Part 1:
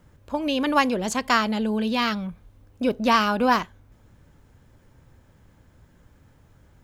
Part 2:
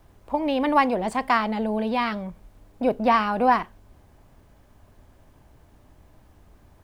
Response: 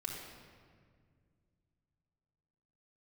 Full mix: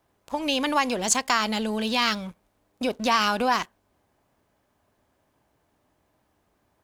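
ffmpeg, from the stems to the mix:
-filter_complex "[0:a]lowpass=8300,crystalizer=i=6:c=0,aeval=exprs='sgn(val(0))*max(abs(val(0))-0.00944,0)':c=same,volume=0.668[s0];[1:a]highpass=f=310:p=1,volume=0.376,asplit=2[s1][s2];[s2]apad=whole_len=301451[s3];[s0][s3]sidechaincompress=threshold=0.0282:ratio=8:attack=7.1:release=110[s4];[s4][s1]amix=inputs=2:normalize=0"

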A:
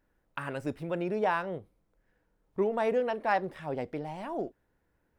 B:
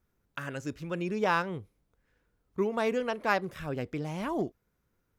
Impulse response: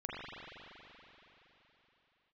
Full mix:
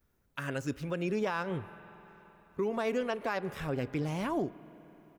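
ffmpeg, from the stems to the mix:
-filter_complex "[0:a]aemphasis=mode=production:type=75kf,volume=0.251[s0];[1:a]adelay=7.2,volume=1.12,asplit=2[s1][s2];[s2]volume=0.0891[s3];[2:a]atrim=start_sample=2205[s4];[s3][s4]afir=irnorm=-1:irlink=0[s5];[s0][s1][s5]amix=inputs=3:normalize=0,alimiter=limit=0.075:level=0:latency=1:release=119"

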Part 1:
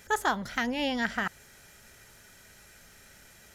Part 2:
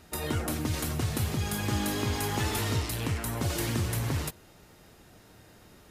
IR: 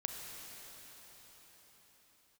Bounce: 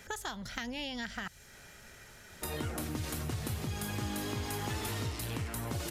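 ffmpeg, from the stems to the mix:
-filter_complex "[0:a]highshelf=f=6800:g=-7,acrossover=split=130|3000[s0][s1][s2];[s1]acompressor=threshold=0.00562:ratio=2.5[s3];[s0][s3][s2]amix=inputs=3:normalize=0,volume=1.33[s4];[1:a]adelay=2300,volume=0.794[s5];[s4][s5]amix=inputs=2:normalize=0,acompressor=threshold=0.0178:ratio=2.5"

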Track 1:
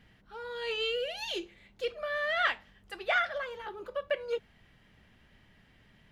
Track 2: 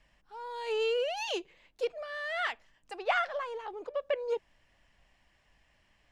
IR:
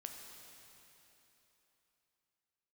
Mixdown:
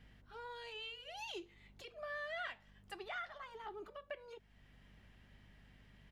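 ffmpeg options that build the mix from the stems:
-filter_complex "[0:a]acompressor=threshold=0.0141:ratio=1.5,aeval=exprs='val(0)+0.00112*(sin(2*PI*50*n/s)+sin(2*PI*2*50*n/s)/2+sin(2*PI*3*50*n/s)/3+sin(2*PI*4*50*n/s)/4+sin(2*PI*5*50*n/s)/5)':c=same,volume=0.596[s0];[1:a]alimiter=level_in=1.12:limit=0.0631:level=0:latency=1,volume=0.891,acompressor=threshold=0.0158:ratio=6,adelay=5.7,volume=0.299,asplit=2[s1][s2];[s2]apad=whole_len=269763[s3];[s0][s3]sidechaincompress=threshold=0.002:ratio=8:attack=42:release=646[s4];[s4][s1]amix=inputs=2:normalize=0"

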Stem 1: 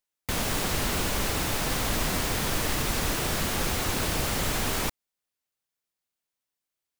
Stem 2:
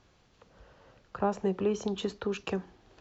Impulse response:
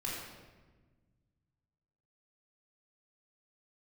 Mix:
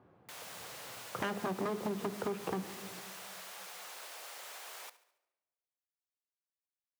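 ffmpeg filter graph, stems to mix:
-filter_complex "[0:a]highpass=f=550:w=0.5412,highpass=f=550:w=1.3066,aeval=exprs='0.141*(cos(1*acos(clip(val(0)/0.141,-1,1)))-cos(1*PI/2))+0.00794*(cos(2*acos(clip(val(0)/0.141,-1,1)))-cos(2*PI/2))':c=same,volume=0.126,asplit=3[s0][s1][s2];[s1]volume=0.0668[s3];[s2]volume=0.141[s4];[1:a]lowpass=1100,aeval=exprs='0.0422*(abs(mod(val(0)/0.0422+3,4)-2)-1)':c=same,volume=1.33,asplit=2[s5][s6];[s6]volume=0.224[s7];[2:a]atrim=start_sample=2205[s8];[s3][s7]amix=inputs=2:normalize=0[s9];[s9][s8]afir=irnorm=-1:irlink=0[s10];[s4]aecho=0:1:71|142|213|284|355|426|497:1|0.49|0.24|0.118|0.0576|0.0282|0.0138[s11];[s0][s5][s10][s11]amix=inputs=4:normalize=0,highpass=f=110:w=0.5412,highpass=f=110:w=1.3066,acompressor=threshold=0.0251:ratio=6"

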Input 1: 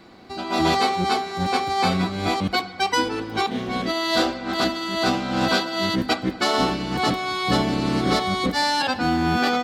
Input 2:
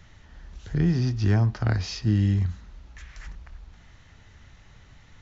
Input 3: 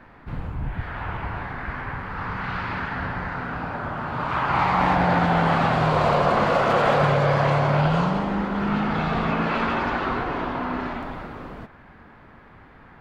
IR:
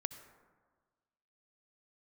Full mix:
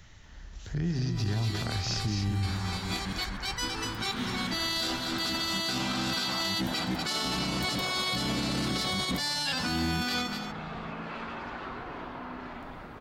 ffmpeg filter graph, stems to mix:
-filter_complex "[0:a]equalizer=f=610:w=0.61:g=-11.5,adelay=650,volume=1.06,asplit=2[s0][s1];[s1]volume=0.188[s2];[1:a]acompressor=threshold=0.0631:ratio=6,volume=0.794,asplit=3[s3][s4][s5];[s4]volume=0.501[s6];[2:a]acompressor=threshold=0.0282:ratio=2.5,adelay=1600,volume=0.398[s7];[s5]apad=whole_len=453411[s8];[s0][s8]sidechaincompress=threshold=0.00282:ratio=4:attack=16:release=432[s9];[s2][s6]amix=inputs=2:normalize=0,aecho=0:1:242:1[s10];[s9][s3][s7][s10]amix=inputs=4:normalize=0,highshelf=f=4000:g=8,alimiter=limit=0.0841:level=0:latency=1:release=20"

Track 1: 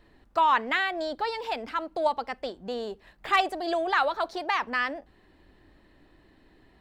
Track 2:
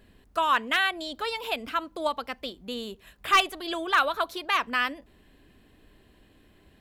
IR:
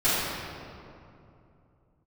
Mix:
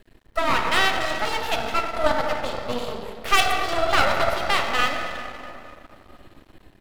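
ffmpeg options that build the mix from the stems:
-filter_complex "[0:a]bandreject=f=62.58:t=h:w=4,bandreject=f=125.16:t=h:w=4,bandreject=f=187.74:t=h:w=4,bandreject=f=250.32:t=h:w=4,bandreject=f=312.9:t=h:w=4,bandreject=f=375.48:t=h:w=4,bandreject=f=438.06:t=h:w=4,bandreject=f=500.64:t=h:w=4,bandreject=f=563.22:t=h:w=4,bandreject=f=625.8:t=h:w=4,bandreject=f=688.38:t=h:w=4,bandreject=f=750.96:t=h:w=4,bandreject=f=813.54:t=h:w=4,bandreject=f=876.12:t=h:w=4,bandreject=f=938.7:t=h:w=4,bandreject=f=1001.28:t=h:w=4,bandreject=f=1063.86:t=h:w=4,bandreject=f=1126.44:t=h:w=4,bandreject=f=1189.02:t=h:w=4,bandreject=f=1251.6:t=h:w=4,bandreject=f=1314.18:t=h:w=4,bandreject=f=1376.76:t=h:w=4,bandreject=f=1439.34:t=h:w=4,bandreject=f=1501.92:t=h:w=4,bandreject=f=1564.5:t=h:w=4,bandreject=f=1627.08:t=h:w=4,bandreject=f=1689.66:t=h:w=4,bandreject=f=1752.24:t=h:w=4,bandreject=f=1814.82:t=h:w=4,bandreject=f=1877.4:t=h:w=4,bandreject=f=1939.98:t=h:w=4,bandreject=f=2002.56:t=h:w=4,bandreject=f=2065.14:t=h:w=4,bandreject=f=2127.72:t=h:w=4,bandreject=f=2190.3:t=h:w=4,bandreject=f=2252.88:t=h:w=4,bandreject=f=2315.46:t=h:w=4,volume=0.501,asplit=2[s0][s1];[s1]volume=0.398[s2];[1:a]adelay=1.1,volume=1.33,asplit=2[s3][s4];[s4]volume=0.106[s5];[2:a]atrim=start_sample=2205[s6];[s2][s5]amix=inputs=2:normalize=0[s7];[s7][s6]afir=irnorm=-1:irlink=0[s8];[s0][s3][s8]amix=inputs=3:normalize=0,dynaudnorm=f=430:g=3:m=1.58,aeval=exprs='max(val(0),0)':c=same"

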